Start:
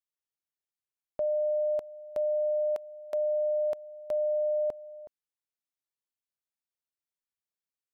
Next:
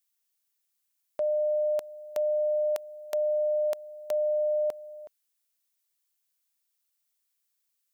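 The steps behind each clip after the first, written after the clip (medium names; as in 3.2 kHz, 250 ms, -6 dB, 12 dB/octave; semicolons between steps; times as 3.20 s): tilt EQ +3.5 dB/octave; trim +4 dB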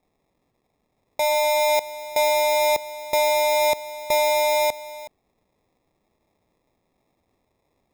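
in parallel at +2 dB: gain riding 0.5 s; on the sum: sample-rate reducer 1.5 kHz, jitter 0%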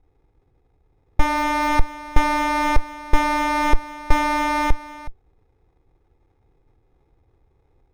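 comb filter that takes the minimum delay 2.4 ms; RIAA curve playback; trim +2.5 dB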